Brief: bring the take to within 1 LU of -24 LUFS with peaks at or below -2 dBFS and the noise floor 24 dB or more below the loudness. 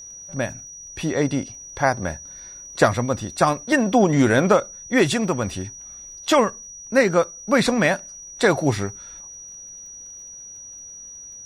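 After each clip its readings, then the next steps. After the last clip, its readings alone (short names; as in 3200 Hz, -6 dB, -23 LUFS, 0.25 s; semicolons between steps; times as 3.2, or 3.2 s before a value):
ticks 39/s; steady tone 5800 Hz; tone level -37 dBFS; loudness -21.0 LUFS; peak -3.5 dBFS; loudness target -24.0 LUFS
-> de-click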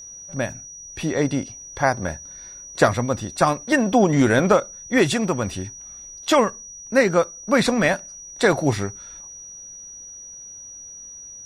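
ticks 0/s; steady tone 5800 Hz; tone level -37 dBFS
-> notch 5800 Hz, Q 30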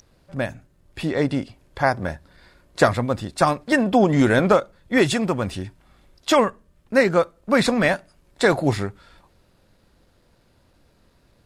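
steady tone none; loudness -21.0 LUFS; peak -3.5 dBFS; loudness target -24.0 LUFS
-> gain -3 dB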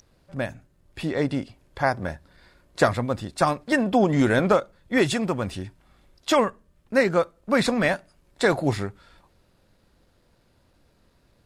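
loudness -24.0 LUFS; peak -6.5 dBFS; noise floor -64 dBFS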